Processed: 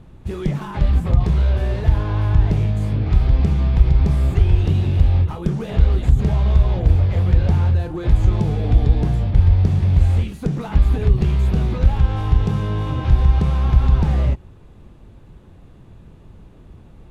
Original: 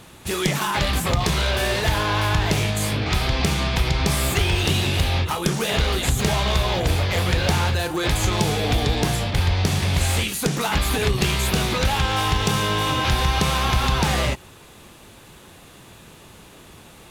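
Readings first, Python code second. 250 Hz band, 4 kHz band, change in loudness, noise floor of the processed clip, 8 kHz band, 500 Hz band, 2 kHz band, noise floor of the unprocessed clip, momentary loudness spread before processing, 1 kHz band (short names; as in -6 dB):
+1.0 dB, -17.0 dB, +3.0 dB, -45 dBFS, under -20 dB, -4.0 dB, -13.5 dB, -46 dBFS, 2 LU, -8.5 dB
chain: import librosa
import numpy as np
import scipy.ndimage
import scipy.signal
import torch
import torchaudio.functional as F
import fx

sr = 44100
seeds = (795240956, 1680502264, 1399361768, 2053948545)

y = fx.tilt_eq(x, sr, slope=-4.5)
y = y * librosa.db_to_amplitude(-9.0)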